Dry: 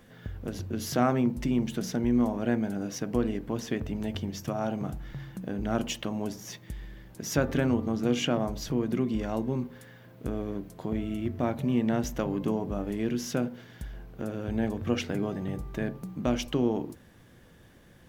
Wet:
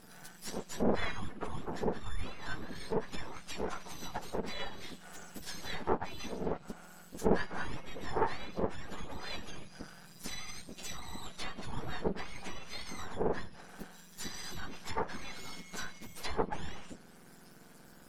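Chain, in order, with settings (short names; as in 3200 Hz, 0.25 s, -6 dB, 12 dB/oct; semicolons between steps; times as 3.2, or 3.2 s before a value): spectrum mirrored in octaves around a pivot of 1600 Hz; half-wave rectifier; treble ducked by the level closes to 1600 Hz, closed at -34 dBFS; gain +7 dB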